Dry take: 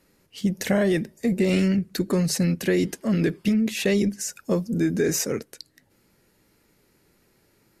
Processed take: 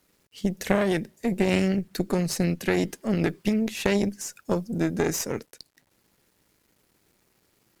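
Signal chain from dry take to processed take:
bit-depth reduction 10 bits, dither none
harmonic generator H 2 −9 dB, 3 −17 dB, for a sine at −9 dBFS

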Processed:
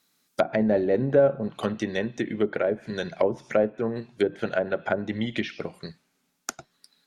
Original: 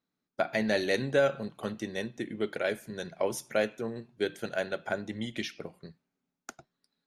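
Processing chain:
treble cut that deepens with the level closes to 710 Hz, closed at −26.5 dBFS
high-shelf EQ 4,300 Hz +10 dB, from 0:01.66 +3 dB
one half of a high-frequency compander encoder only
level +7.5 dB

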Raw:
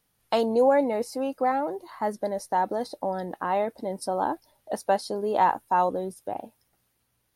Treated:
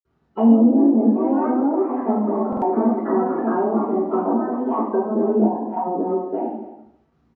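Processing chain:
spectral magnitudes quantised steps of 30 dB
single-tap delay 259 ms −16.5 dB
delay with pitch and tempo change per echo 128 ms, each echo +3 semitones, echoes 2, each echo −6 dB
treble cut that deepens with the level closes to 410 Hz, closed at −19 dBFS
downward compressor, threshold −26 dBFS, peak gain reduction 7.5 dB
Chebyshev band-pass filter 220–3,100 Hz, order 5
surface crackle 180 per second −56 dBFS
spectral tilt −4 dB per octave
convolution reverb RT60 0.75 s, pre-delay 46 ms
buffer that repeats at 0:02.48, samples 2,048, times 2

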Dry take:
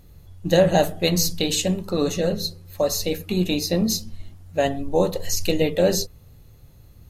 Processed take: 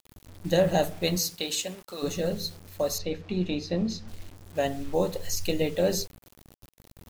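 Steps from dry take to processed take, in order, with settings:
0:01.17–0:02.02: high-pass filter 330 Hz → 1,300 Hz 6 dB per octave
bit reduction 7 bits
0:02.98–0:04.08: high-frequency loss of the air 160 metres
level −6 dB

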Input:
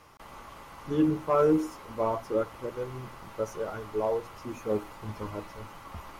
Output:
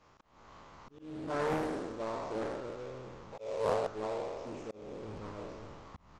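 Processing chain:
peak hold with a decay on every bin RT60 1.78 s
0:03.32–0:03.87: flat-topped bell 590 Hz +13 dB 1.2 octaves
harmonic and percussive parts rebalanced harmonic −7 dB
volume swells 350 ms
in parallel at −7 dB: sample-rate reduction 3,000 Hz, jitter 20%
on the sum: downsampling to 16,000 Hz
highs frequency-modulated by the lows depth 0.76 ms
level −9 dB

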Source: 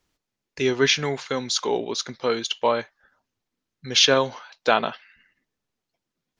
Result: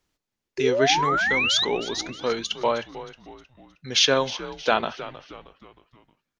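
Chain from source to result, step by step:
sound drawn into the spectrogram rise, 0:00.58–0:01.65, 370–4,100 Hz −21 dBFS
echo with shifted repeats 313 ms, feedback 45%, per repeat −93 Hz, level −14.5 dB
level −2 dB

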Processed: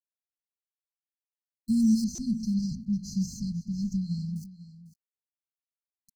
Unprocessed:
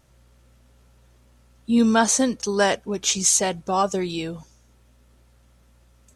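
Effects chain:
lower of the sound and its delayed copy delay 5.4 ms
bass and treble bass +7 dB, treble +5 dB
mains-hum notches 60/120/180/240/300/360/420/480/540 Hz
brickwall limiter −14.5 dBFS, peak gain reduction 12.5 dB
notch comb filter 1,100 Hz
centre clipping without the shift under −42.5 dBFS
linear-phase brick-wall band-stop 260–4,100 Hz
0:02.04–0:04.36: high-frequency loss of the air 240 metres
single-tap delay 498 ms −16 dB
buffer that repeats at 0:02.15, samples 128, times 10

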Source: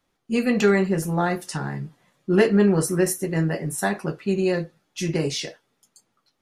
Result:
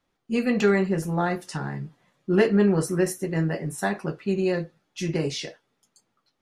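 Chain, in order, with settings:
high-shelf EQ 8,700 Hz −9.5 dB
level −2 dB

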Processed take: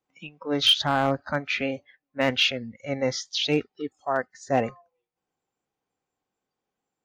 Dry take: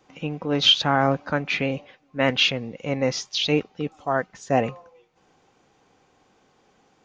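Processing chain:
noise reduction from a noise print of the clip's start 22 dB
gain into a clipping stage and back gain 10 dB
level −2 dB

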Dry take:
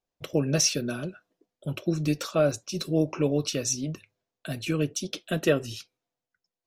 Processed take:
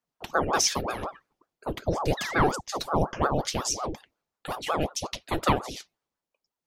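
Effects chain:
sound drawn into the spectrogram fall, 0:02.17–0:02.61, 340–3,000 Hz −34 dBFS
ring modulator whose carrier an LFO sweeps 580 Hz, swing 75%, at 5.5 Hz
level +2.5 dB

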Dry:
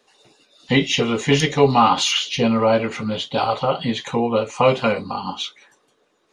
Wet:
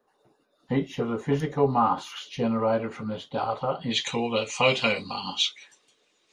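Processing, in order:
flat-topped bell 4,300 Hz −15 dB 2.4 octaves, from 0:02.16 −8 dB, from 0:03.90 +11 dB
level −7.5 dB

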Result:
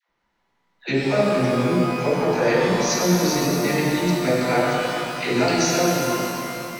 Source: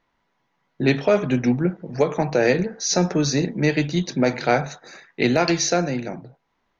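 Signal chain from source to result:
all-pass dispersion lows, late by 97 ms, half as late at 640 Hz
reverb with rising layers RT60 2.8 s, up +12 semitones, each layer −8 dB, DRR −3.5 dB
level −4.5 dB

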